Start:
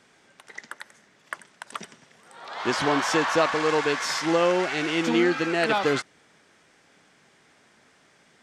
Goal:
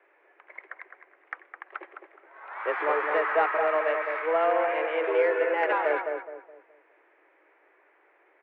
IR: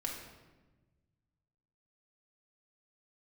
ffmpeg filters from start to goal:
-filter_complex "[0:a]highpass=f=160:t=q:w=0.5412,highpass=f=160:t=q:w=1.307,lowpass=f=2200:t=q:w=0.5176,lowpass=f=2200:t=q:w=0.7071,lowpass=f=2200:t=q:w=1.932,afreqshift=160,acontrast=48,asplit=2[s0][s1];[s1]adelay=210,lowpass=f=1300:p=1,volume=0.631,asplit=2[s2][s3];[s3]adelay=210,lowpass=f=1300:p=1,volume=0.36,asplit=2[s4][s5];[s5]adelay=210,lowpass=f=1300:p=1,volume=0.36,asplit=2[s6][s7];[s7]adelay=210,lowpass=f=1300:p=1,volume=0.36,asplit=2[s8][s9];[s9]adelay=210,lowpass=f=1300:p=1,volume=0.36[s10];[s0][s2][s4][s6][s8][s10]amix=inputs=6:normalize=0,volume=0.376"

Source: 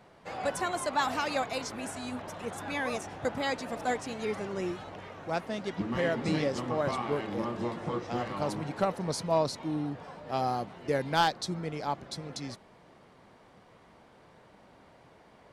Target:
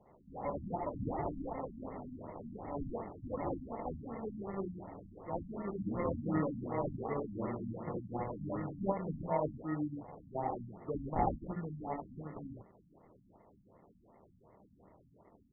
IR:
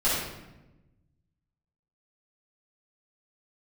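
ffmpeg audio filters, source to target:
-af "aecho=1:1:26|67|77:0.398|0.501|0.668,acrusher=samples=28:mix=1:aa=0.000001,afftfilt=real='re*lt(b*sr/1024,270*pow(2200/270,0.5+0.5*sin(2*PI*2.7*pts/sr)))':imag='im*lt(b*sr/1024,270*pow(2200/270,0.5+0.5*sin(2*PI*2.7*pts/sr)))':win_size=1024:overlap=0.75,volume=0.447"

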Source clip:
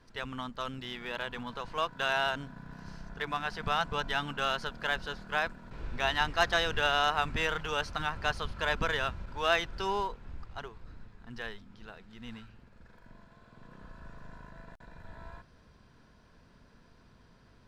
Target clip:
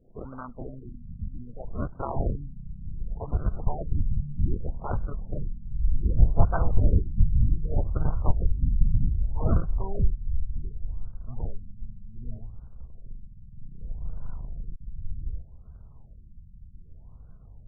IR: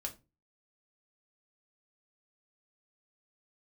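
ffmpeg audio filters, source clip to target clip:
-af "acrusher=samples=35:mix=1:aa=0.000001:lfo=1:lforange=35:lforate=1.8,asubboost=boost=8.5:cutoff=100,afftfilt=real='re*lt(b*sr/1024,230*pow(1600/230,0.5+0.5*sin(2*PI*0.65*pts/sr)))':imag='im*lt(b*sr/1024,230*pow(1600/230,0.5+0.5*sin(2*PI*0.65*pts/sr)))':win_size=1024:overlap=0.75"

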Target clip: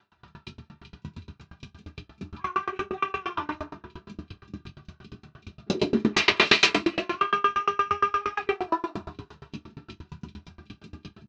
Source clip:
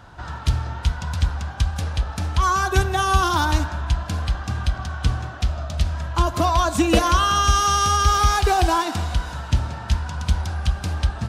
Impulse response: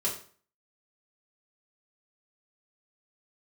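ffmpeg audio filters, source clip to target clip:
-filter_complex "[0:a]afwtdn=0.0562,acrossover=split=710|1000[s0][s1][s2];[s0]alimiter=limit=0.168:level=0:latency=1[s3];[s3][s1][s2]amix=inputs=3:normalize=0,acompressor=threshold=0.0398:ratio=2.5,aphaser=in_gain=1:out_gain=1:delay=4.9:decay=0.29:speed=0.88:type=triangular,asplit=3[s4][s5][s6];[s4]afade=t=out:st=5.66:d=0.02[s7];[s5]aeval=exprs='0.133*sin(PI/2*6.31*val(0)/0.133)':c=same,afade=t=in:st=5.66:d=0.02,afade=t=out:st=6.74:d=0.02[s8];[s6]afade=t=in:st=6.74:d=0.02[s9];[s7][s8][s9]amix=inputs=3:normalize=0,highpass=210,equalizer=f=290:t=q:w=4:g=6,equalizer=f=540:t=q:w=4:g=-8,equalizer=f=870:t=q:w=4:g=-4,equalizer=f=2500:t=q:w=4:g=9,equalizer=f=4000:t=q:w=4:g=5,lowpass=f=5900:w=0.5412,lowpass=f=5900:w=1.3066,asplit=6[s10][s11][s12][s13][s14][s15];[s11]adelay=174,afreqshift=31,volume=0.119[s16];[s12]adelay=348,afreqshift=62,volume=0.07[s17];[s13]adelay=522,afreqshift=93,volume=0.0412[s18];[s14]adelay=696,afreqshift=124,volume=0.0245[s19];[s15]adelay=870,afreqshift=155,volume=0.0145[s20];[s10][s16][s17][s18][s19][s20]amix=inputs=6:normalize=0[s21];[1:a]atrim=start_sample=2205[s22];[s21][s22]afir=irnorm=-1:irlink=0,aeval=exprs='val(0)*pow(10,-31*if(lt(mod(8.6*n/s,1),2*abs(8.6)/1000),1-mod(8.6*n/s,1)/(2*abs(8.6)/1000),(mod(8.6*n/s,1)-2*abs(8.6)/1000)/(1-2*abs(8.6)/1000))/20)':c=same,volume=1.12"

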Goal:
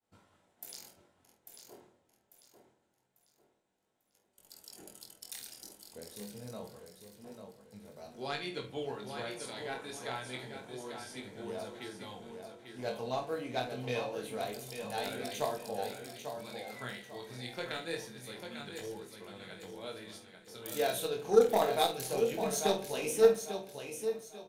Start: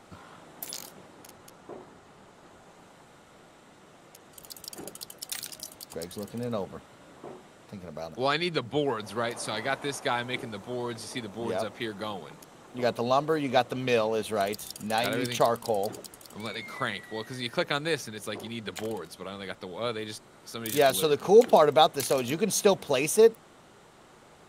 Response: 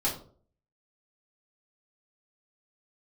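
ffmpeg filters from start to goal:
-filter_complex "[0:a]agate=range=0.0224:threshold=0.00794:ratio=3:detection=peak,highshelf=f=5100:g=6.5,bandreject=f=1200:w=7.1,aecho=1:1:845|1690|2535|3380:0.473|0.161|0.0547|0.0186,flanger=delay=20:depth=4.8:speed=0.26,aeval=exprs='0.376*(cos(1*acos(clip(val(0)/0.376,-1,1)))-cos(1*PI/2))+0.0668*(cos(3*acos(clip(val(0)/0.376,-1,1)))-cos(3*PI/2))':c=same,asplit=2[s0][s1];[s1]adelay=48,volume=0.316[s2];[s0][s2]amix=inputs=2:normalize=0,asplit=2[s3][s4];[1:a]atrim=start_sample=2205,asetrate=24255,aresample=44100,lowpass=5300[s5];[s4][s5]afir=irnorm=-1:irlink=0,volume=0.106[s6];[s3][s6]amix=inputs=2:normalize=0,volume=0.631"

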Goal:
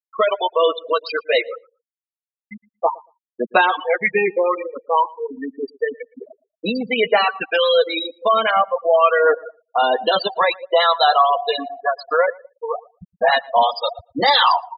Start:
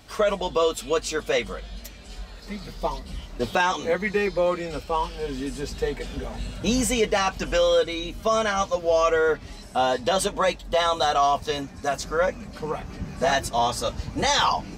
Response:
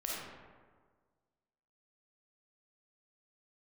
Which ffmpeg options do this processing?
-filter_complex "[0:a]highpass=f=690:p=1,asettb=1/sr,asplit=3[s0][s1][s2];[s0]atrim=end=6.214[s3];[s1]atrim=start=6.21:end=6.98,asetpts=PTS-STARTPTS,afade=t=in:d=0.004:c=qsin,afade=t=out:st=0.766:d=0.004:c=qsin,acrossover=split=3000[s4][s5];[s5]acompressor=threshold=0.0141:ratio=4:attack=1:release=60[s6];[s4][s6]amix=inputs=2:normalize=0[s7];[s2]atrim=start=6.976[s8];[s3][s7]acrossfade=d=0.004:c1=hsin:c2=qsin[s9];[s9][s8]acrossfade=d=0.004:c1=qsin:c2=hsin,asplit=2[s10][s11];[1:a]atrim=start_sample=2205,asetrate=25137,aresample=44100,adelay=22[s12];[s11][s12]afir=irnorm=-1:irlink=0,volume=0.0891[s13];[s10][s13]amix=inputs=2:normalize=0,aphaser=in_gain=1:out_gain=1:delay=1.4:decay=0.28:speed=1.4:type=triangular,aresample=11025,aresample=44100,afftfilt=real='re*gte(hypot(re,im),0.0794)':imag='im*gte(hypot(re,im),0.0794)':win_size=1024:overlap=0.75,asplit=2[s14][s15];[s15]acompressor=threshold=0.0224:ratio=6,volume=0.794[s16];[s14][s16]amix=inputs=2:normalize=0,asplit=2[s17][s18];[s18]adelay=115,lowpass=f=2000:p=1,volume=0.0708,asplit=2[s19][s20];[s20]adelay=115,lowpass=f=2000:p=1,volume=0.15[s21];[s17][s19][s21]amix=inputs=3:normalize=0,volume=2.24"

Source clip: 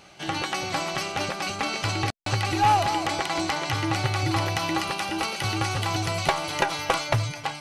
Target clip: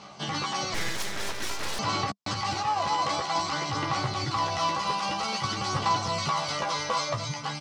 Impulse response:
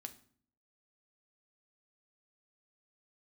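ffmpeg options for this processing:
-filter_complex "[0:a]alimiter=limit=0.112:level=0:latency=1:release=50,asoftclip=type=tanh:threshold=0.0794,highpass=110,equalizer=f=200:t=q:w=4:g=6,equalizer=f=340:t=q:w=4:g=-5,equalizer=f=1100:t=q:w=4:g=9,equalizer=f=1600:t=q:w=4:g=-5,equalizer=f=2500:t=q:w=4:g=-5,equalizer=f=5100:t=q:w=4:g=4,lowpass=f=7500:w=0.5412,lowpass=f=7500:w=1.3066,aphaser=in_gain=1:out_gain=1:delay=2:decay=0.32:speed=0.51:type=sinusoidal,asplit=2[s0][s1];[s1]adelay=14,volume=0.631[s2];[s0][s2]amix=inputs=2:normalize=0,asettb=1/sr,asplit=3[s3][s4][s5];[s3]atrim=end=0.744[s6];[s4]atrim=start=0.74:end=1.79,asetpts=PTS-STARTPTS,afade=t=in:d=0.004:c=qsin,afade=t=out:st=1.046:d=0.004:c=qsin,aeval=exprs='abs(val(0))':c=same[s7];[s5]atrim=start=1.786[s8];[s6][s7]acrossfade=d=0.004:c1=hsin:c2=qsin[s9];[s9][s8]acrossfade=d=0.004:c1=qsin:c2=hsin"

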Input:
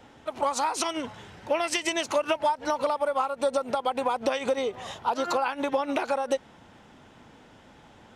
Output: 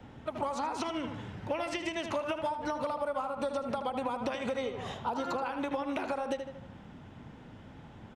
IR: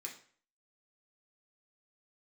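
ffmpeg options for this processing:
-filter_complex "[0:a]bass=f=250:g=12,treble=f=4000:g=-7,asplit=2[s0][s1];[s1]adelay=77,lowpass=f=4200:p=1,volume=0.376,asplit=2[s2][s3];[s3]adelay=77,lowpass=f=4200:p=1,volume=0.43,asplit=2[s4][s5];[s5]adelay=77,lowpass=f=4200:p=1,volume=0.43,asplit=2[s6][s7];[s7]adelay=77,lowpass=f=4200:p=1,volume=0.43,asplit=2[s8][s9];[s9]adelay=77,lowpass=f=4200:p=1,volume=0.43[s10];[s2][s4][s6][s8][s10]amix=inputs=5:normalize=0[s11];[s0][s11]amix=inputs=2:normalize=0,acrossover=split=80|780|5900[s12][s13][s14][s15];[s12]acompressor=threshold=0.00126:ratio=4[s16];[s13]acompressor=threshold=0.0251:ratio=4[s17];[s14]acompressor=threshold=0.02:ratio=4[s18];[s15]acompressor=threshold=0.002:ratio=4[s19];[s16][s17][s18][s19]amix=inputs=4:normalize=0,volume=0.75"

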